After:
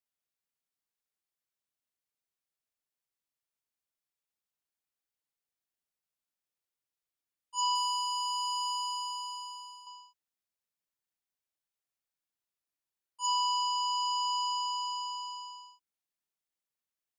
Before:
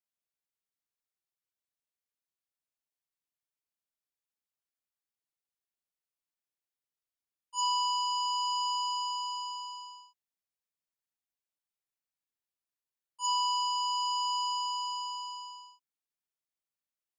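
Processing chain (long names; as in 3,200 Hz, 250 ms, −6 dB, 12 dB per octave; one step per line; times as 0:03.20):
0:07.75–0:09.87: power curve on the samples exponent 1.4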